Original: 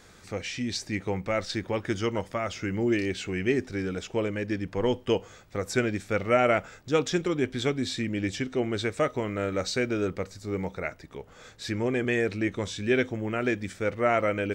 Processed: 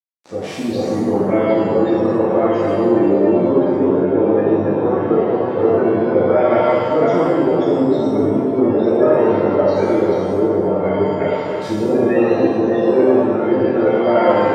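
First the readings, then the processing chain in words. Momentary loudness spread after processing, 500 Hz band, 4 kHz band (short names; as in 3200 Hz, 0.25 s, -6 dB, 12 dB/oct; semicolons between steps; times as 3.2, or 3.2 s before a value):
4 LU, +14.5 dB, n/a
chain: regenerating reverse delay 0.283 s, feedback 40%, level -1.5 dB; tilt shelf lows +9.5 dB; in parallel at -2.5 dB: limiter -16 dBFS, peak gain reduction 10 dB; on the sum: AGC gain up to 14.5 dB; overloaded stage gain 8.5 dB; bit-crush 5-bit; spectral gate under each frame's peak -25 dB strong; BPF 240–6900 Hz; on a send: analogue delay 0.282 s, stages 4096, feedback 79%, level -17 dB; on the sum: shimmer reverb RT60 1.1 s, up +7 st, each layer -8 dB, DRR -7 dB; gain -7.5 dB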